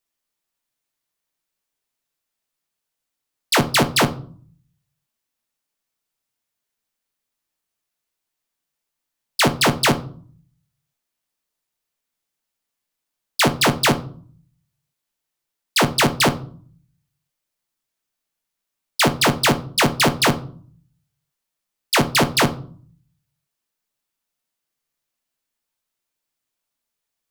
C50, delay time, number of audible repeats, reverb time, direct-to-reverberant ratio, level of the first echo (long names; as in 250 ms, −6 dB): 16.0 dB, no echo audible, no echo audible, 0.50 s, 8.0 dB, no echo audible